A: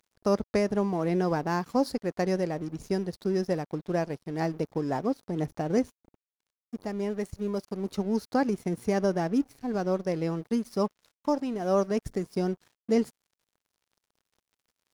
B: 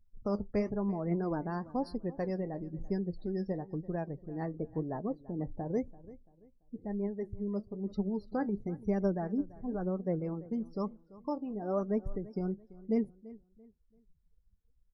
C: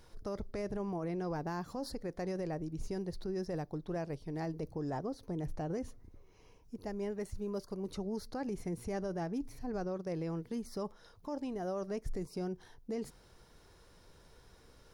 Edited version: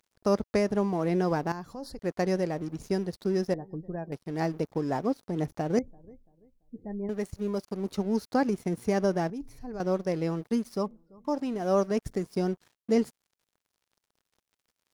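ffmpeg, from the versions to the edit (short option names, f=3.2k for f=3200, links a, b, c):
-filter_complex "[2:a]asplit=2[a][b];[1:a]asplit=3[c][d][e];[0:a]asplit=6[f][g][h][i][j][k];[f]atrim=end=1.522[l];[a]atrim=start=1.518:end=1.992[m];[g]atrim=start=1.988:end=3.542[n];[c]atrim=start=3.538:end=4.122[o];[h]atrim=start=4.118:end=5.792[p];[d]atrim=start=5.788:end=7.092[q];[i]atrim=start=7.088:end=9.302[r];[b]atrim=start=9.298:end=9.802[s];[j]atrim=start=9.798:end=10.95[t];[e]atrim=start=10.71:end=11.42[u];[k]atrim=start=11.18[v];[l][m]acrossfade=d=0.004:c1=hsin:c2=hsin[w];[w][n]acrossfade=d=0.004:c1=hsin:c2=hsin[x];[x][o]acrossfade=d=0.004:c1=hsin:c2=hsin[y];[y][p]acrossfade=d=0.004:c1=hsin:c2=hsin[z];[z][q]acrossfade=d=0.004:c1=hsin:c2=hsin[aa];[aa][r]acrossfade=d=0.004:c1=hsin:c2=hsin[ab];[ab][s]acrossfade=d=0.004:c1=hsin:c2=hsin[ac];[ac][t]acrossfade=d=0.004:c1=hsin:c2=hsin[ad];[ad][u]acrossfade=d=0.24:c1=tri:c2=tri[ae];[ae][v]acrossfade=d=0.24:c1=tri:c2=tri"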